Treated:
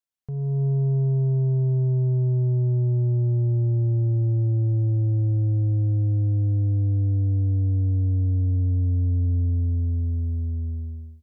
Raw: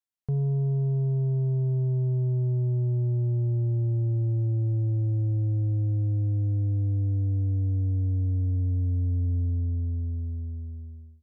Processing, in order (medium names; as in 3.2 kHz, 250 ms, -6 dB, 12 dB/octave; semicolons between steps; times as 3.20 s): in parallel at +2.5 dB: peak limiter -33.5 dBFS, peak gain reduction 10.5 dB; on the sum: level rider gain up to 9.5 dB; trim -8.5 dB